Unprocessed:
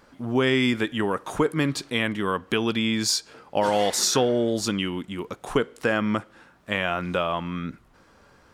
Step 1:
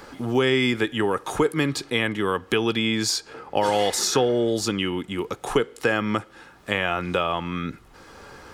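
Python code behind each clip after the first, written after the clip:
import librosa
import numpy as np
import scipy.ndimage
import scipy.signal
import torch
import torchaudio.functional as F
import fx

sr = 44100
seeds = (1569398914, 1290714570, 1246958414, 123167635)

y = x + 0.31 * np.pad(x, (int(2.4 * sr / 1000.0), 0))[:len(x)]
y = fx.band_squash(y, sr, depth_pct=40)
y = y * librosa.db_to_amplitude(1.0)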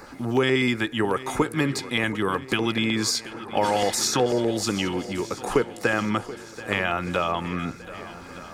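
y = fx.filter_lfo_notch(x, sr, shape='square', hz=8.1, low_hz=450.0, high_hz=3200.0, q=2.3)
y = fx.echo_swing(y, sr, ms=1218, ratio=1.5, feedback_pct=48, wet_db=-16.0)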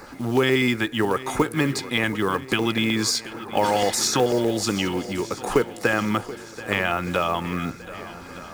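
y = fx.quant_companded(x, sr, bits=6)
y = y * librosa.db_to_amplitude(1.5)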